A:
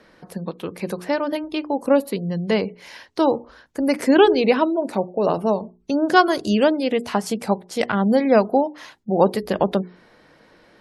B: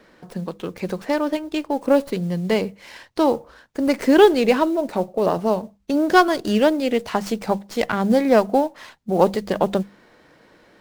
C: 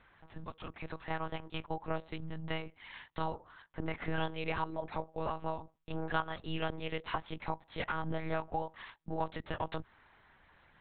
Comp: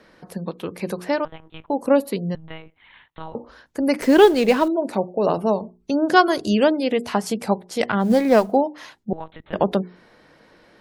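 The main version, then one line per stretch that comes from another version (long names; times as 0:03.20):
A
0:01.25–0:01.70: punch in from C
0:02.35–0:03.35: punch in from C
0:04.02–0:04.68: punch in from B
0:08.03–0:08.52: punch in from B, crossfade 0.10 s
0:09.13–0:09.53: punch in from C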